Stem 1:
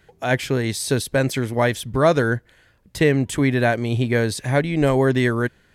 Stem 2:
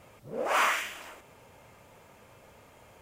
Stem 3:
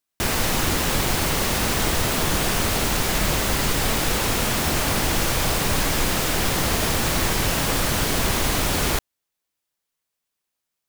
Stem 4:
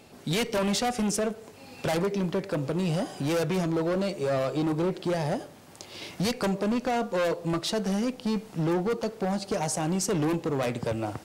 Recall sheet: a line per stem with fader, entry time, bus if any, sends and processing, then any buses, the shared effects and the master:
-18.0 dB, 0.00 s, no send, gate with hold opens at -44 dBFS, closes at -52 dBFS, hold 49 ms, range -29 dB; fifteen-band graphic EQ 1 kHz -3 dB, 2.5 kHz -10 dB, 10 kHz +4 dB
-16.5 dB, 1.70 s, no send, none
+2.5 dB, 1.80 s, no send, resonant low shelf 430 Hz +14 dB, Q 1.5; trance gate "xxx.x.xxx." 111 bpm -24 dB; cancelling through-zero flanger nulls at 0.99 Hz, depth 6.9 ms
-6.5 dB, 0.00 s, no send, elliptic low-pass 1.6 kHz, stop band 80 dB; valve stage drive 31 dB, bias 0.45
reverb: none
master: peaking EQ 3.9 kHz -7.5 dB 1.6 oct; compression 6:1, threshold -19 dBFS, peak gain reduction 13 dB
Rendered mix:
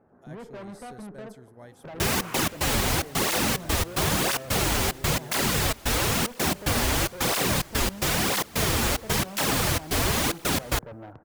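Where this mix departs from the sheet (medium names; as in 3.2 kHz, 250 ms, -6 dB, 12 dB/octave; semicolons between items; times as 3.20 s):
stem 1 -18.0 dB -> -27.5 dB; stem 3: missing resonant low shelf 430 Hz +14 dB, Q 1.5; master: missing peaking EQ 3.9 kHz -7.5 dB 1.6 oct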